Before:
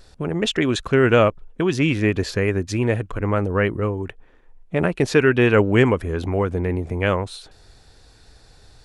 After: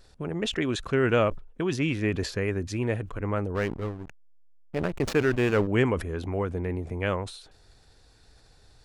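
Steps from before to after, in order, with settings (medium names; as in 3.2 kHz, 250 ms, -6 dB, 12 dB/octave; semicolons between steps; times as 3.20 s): 3.55–5.67 s: hysteresis with a dead band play -20.5 dBFS; decay stretcher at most 130 dB/s; trim -7.5 dB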